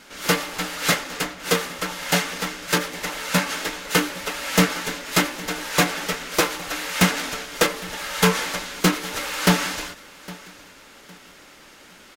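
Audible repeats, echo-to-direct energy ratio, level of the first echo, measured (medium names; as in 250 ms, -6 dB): 2, -20.0 dB, -20.5 dB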